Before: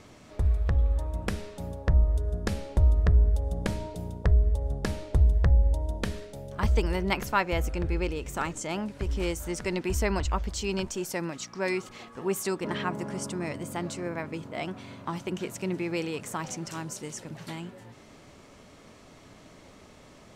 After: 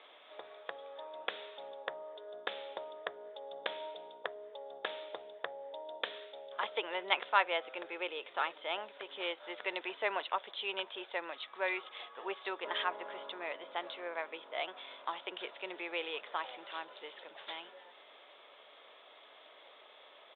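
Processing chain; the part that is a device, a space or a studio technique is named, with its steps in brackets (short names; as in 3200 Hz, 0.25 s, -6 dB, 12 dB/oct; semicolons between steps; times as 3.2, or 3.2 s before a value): musical greeting card (downsampling 8000 Hz; HPF 510 Hz 24 dB/oct; bell 3500 Hz +11 dB 0.29 oct); gain -2.5 dB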